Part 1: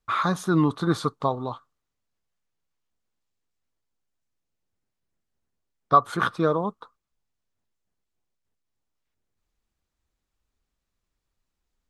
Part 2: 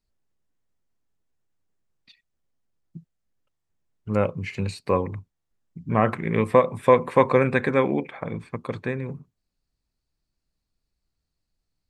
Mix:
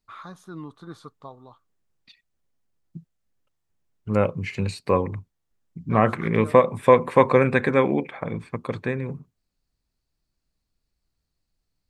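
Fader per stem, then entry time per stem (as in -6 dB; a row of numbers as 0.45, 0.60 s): -17.0, +1.5 dB; 0.00, 0.00 s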